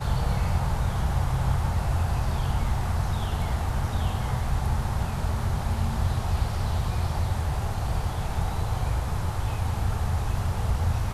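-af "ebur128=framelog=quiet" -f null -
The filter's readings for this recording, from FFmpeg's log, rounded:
Integrated loudness:
  I:         -27.8 LUFS
  Threshold: -37.8 LUFS
Loudness range:
  LRA:         1.7 LU
  Threshold: -48.0 LUFS
  LRA low:   -28.8 LUFS
  LRA high:  -27.1 LUFS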